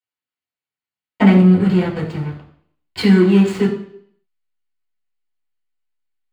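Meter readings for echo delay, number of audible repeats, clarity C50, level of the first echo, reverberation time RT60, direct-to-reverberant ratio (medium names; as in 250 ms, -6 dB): no echo, no echo, 8.0 dB, no echo, 0.60 s, -5.5 dB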